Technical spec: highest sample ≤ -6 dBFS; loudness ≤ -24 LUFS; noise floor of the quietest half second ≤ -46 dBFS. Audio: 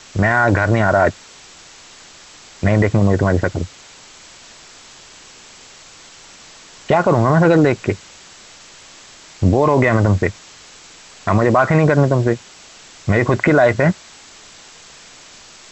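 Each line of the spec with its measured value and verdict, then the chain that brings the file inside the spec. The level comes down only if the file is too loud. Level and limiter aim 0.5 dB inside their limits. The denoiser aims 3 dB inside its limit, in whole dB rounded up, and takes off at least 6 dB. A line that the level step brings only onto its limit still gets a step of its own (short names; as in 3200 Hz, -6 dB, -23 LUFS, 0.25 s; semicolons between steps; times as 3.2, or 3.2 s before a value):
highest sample -3.5 dBFS: fail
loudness -16.0 LUFS: fail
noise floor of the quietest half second -42 dBFS: fail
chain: gain -8.5 dB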